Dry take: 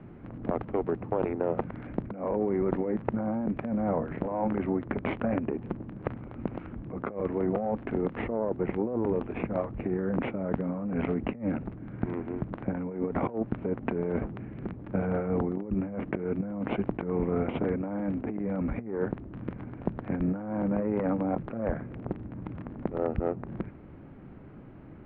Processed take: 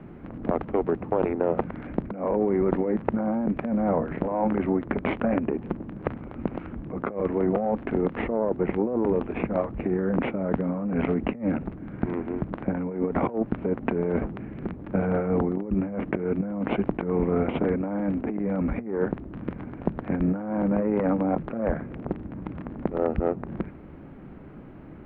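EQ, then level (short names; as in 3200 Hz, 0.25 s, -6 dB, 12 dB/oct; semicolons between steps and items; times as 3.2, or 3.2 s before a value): bell 110 Hz -12.5 dB 0.22 oct; +4.5 dB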